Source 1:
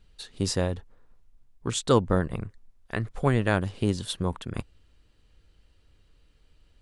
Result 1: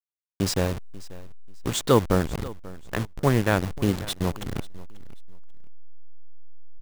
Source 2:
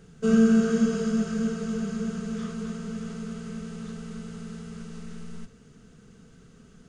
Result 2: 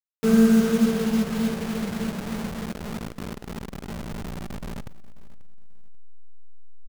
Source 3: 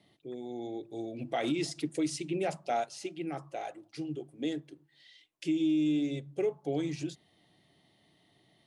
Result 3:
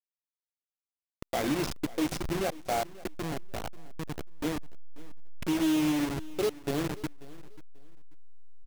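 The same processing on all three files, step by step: send-on-delta sampling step -29 dBFS; feedback delay 538 ms, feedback 24%, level -19.5 dB; trim +2.5 dB

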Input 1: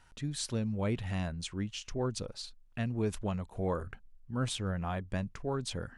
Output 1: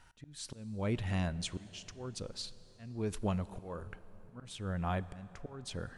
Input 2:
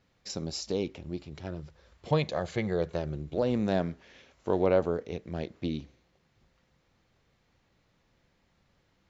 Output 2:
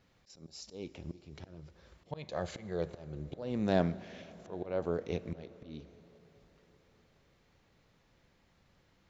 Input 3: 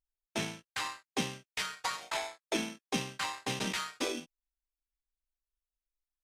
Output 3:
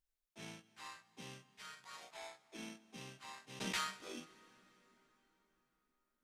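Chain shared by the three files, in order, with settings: slow attack 479 ms; plate-style reverb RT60 4.8 s, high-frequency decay 0.7×, DRR 16.5 dB; trim +1 dB

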